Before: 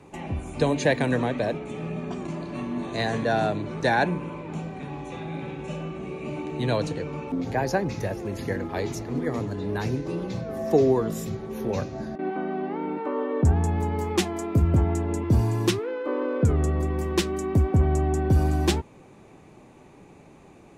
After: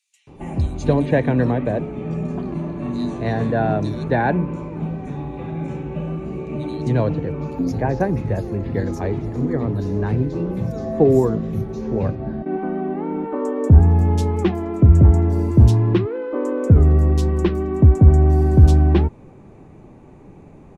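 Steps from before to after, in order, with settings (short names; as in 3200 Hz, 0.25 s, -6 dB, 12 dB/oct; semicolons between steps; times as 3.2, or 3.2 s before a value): tilt -2.5 dB/oct; bands offset in time highs, lows 0.27 s, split 3600 Hz; gain +1.5 dB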